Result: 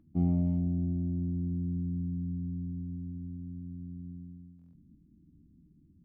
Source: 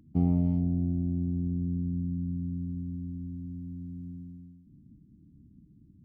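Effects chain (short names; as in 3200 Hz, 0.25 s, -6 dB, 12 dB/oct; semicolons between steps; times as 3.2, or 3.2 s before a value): on a send at -7 dB: reverb RT60 0.25 s, pre-delay 3 ms; on the sum: stuck buffer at 4.57, samples 1024, times 6; mismatched tape noise reduction decoder only; gain -5 dB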